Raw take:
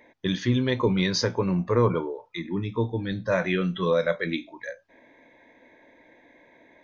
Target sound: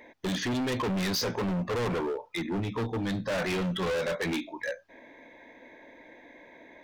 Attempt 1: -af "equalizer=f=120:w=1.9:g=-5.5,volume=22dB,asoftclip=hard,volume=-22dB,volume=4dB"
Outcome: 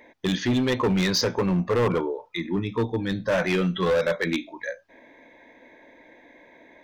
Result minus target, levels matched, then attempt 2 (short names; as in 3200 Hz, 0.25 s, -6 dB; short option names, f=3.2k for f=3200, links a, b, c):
overloaded stage: distortion -6 dB
-af "equalizer=f=120:w=1.9:g=-5.5,volume=31.5dB,asoftclip=hard,volume=-31.5dB,volume=4dB"